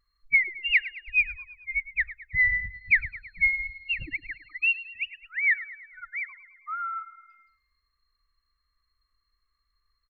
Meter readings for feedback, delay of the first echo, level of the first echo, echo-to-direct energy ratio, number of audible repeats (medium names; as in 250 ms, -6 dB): 57%, 108 ms, -16.0 dB, -14.5 dB, 4